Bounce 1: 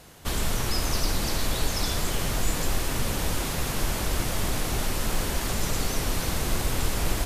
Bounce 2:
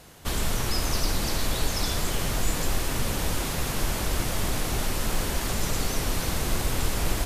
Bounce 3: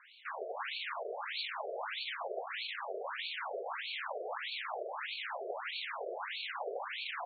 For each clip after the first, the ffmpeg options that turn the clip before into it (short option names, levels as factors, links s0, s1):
-af anull
-af "asoftclip=type=tanh:threshold=0.141,afftfilt=real='re*between(b*sr/1024,490*pow(3200/490,0.5+0.5*sin(2*PI*1.6*pts/sr))/1.41,490*pow(3200/490,0.5+0.5*sin(2*PI*1.6*pts/sr))*1.41)':imag='im*between(b*sr/1024,490*pow(3200/490,0.5+0.5*sin(2*PI*1.6*pts/sr))/1.41,490*pow(3200/490,0.5+0.5*sin(2*PI*1.6*pts/sr))*1.41)':win_size=1024:overlap=0.75,volume=1.12"